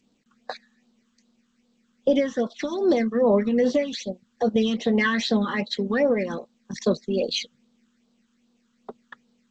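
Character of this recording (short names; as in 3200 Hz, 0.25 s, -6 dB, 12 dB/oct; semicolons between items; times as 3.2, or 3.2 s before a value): a quantiser's noise floor 12-bit, dither none; phasing stages 8, 2.5 Hz, lowest notch 630–2200 Hz; G.722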